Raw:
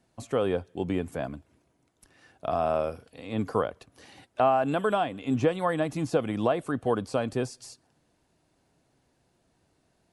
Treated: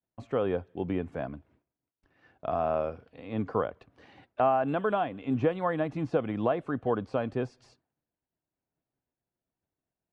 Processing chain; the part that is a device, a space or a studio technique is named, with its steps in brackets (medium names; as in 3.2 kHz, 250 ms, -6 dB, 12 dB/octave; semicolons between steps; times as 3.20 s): hearing-loss simulation (low-pass 2.5 kHz 12 dB/octave; expander -57 dBFS); trim -2 dB